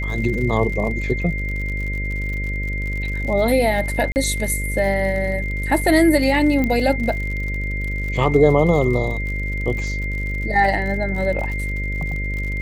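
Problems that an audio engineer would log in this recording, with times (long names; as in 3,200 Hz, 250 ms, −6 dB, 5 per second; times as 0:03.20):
mains buzz 50 Hz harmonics 12 −25 dBFS
surface crackle 62 per second −28 dBFS
whistle 2,100 Hz −27 dBFS
0:04.12–0:04.16: drop-out 39 ms
0:06.64: click −10 dBFS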